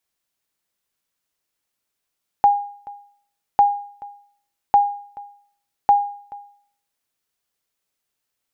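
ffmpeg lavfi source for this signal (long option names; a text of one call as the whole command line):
ffmpeg -f lavfi -i "aevalsrc='0.473*(sin(2*PI*814*mod(t,1.15))*exp(-6.91*mod(t,1.15)/0.55)+0.075*sin(2*PI*814*max(mod(t,1.15)-0.43,0))*exp(-6.91*max(mod(t,1.15)-0.43,0)/0.55))':duration=4.6:sample_rate=44100" out.wav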